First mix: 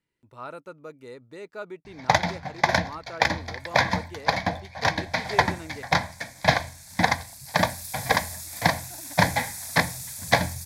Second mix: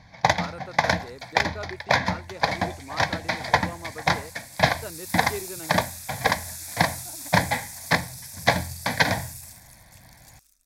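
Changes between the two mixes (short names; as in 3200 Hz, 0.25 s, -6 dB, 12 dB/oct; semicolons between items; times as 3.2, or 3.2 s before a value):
first sound: entry -1.85 s; second sound: entry -2.75 s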